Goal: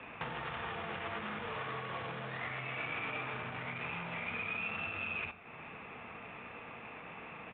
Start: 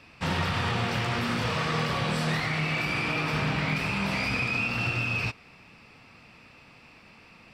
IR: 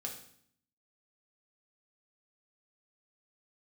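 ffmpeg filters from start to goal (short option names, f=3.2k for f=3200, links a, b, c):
-filter_complex "[0:a]asplit=2[a][b];[1:a]atrim=start_sample=2205,afade=t=out:st=0.15:d=0.01,atrim=end_sample=7056[c];[b][c]afir=irnorm=-1:irlink=0,volume=-4dB[d];[a][d]amix=inputs=2:normalize=0,alimiter=level_in=0.5dB:limit=-24dB:level=0:latency=1:release=371,volume=-0.5dB,adynamicsmooth=sensitivity=3.5:basefreq=1.9k,aresample=8000,aresample=44100,acompressor=threshold=-42dB:ratio=6,highpass=f=550:p=1,afreqshift=-26,volume=8dB"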